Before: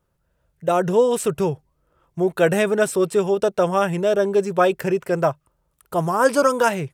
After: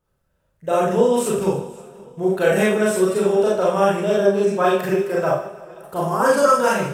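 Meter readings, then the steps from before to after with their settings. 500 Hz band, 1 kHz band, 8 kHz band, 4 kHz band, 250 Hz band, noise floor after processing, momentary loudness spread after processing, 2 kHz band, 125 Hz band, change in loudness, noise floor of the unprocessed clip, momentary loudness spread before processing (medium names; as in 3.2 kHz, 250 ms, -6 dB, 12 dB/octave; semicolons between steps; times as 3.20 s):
+1.5 dB, +1.5 dB, +1.5 dB, +1.0 dB, +1.5 dB, -68 dBFS, 10 LU, +1.0 dB, -0.5 dB, +1.5 dB, -70 dBFS, 8 LU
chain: two-band feedback delay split 460 Hz, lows 110 ms, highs 151 ms, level -15.5 dB; Schroeder reverb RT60 0.42 s, combs from 29 ms, DRR -5.5 dB; modulated delay 528 ms, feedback 48%, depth 79 cents, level -23 dB; trim -5.5 dB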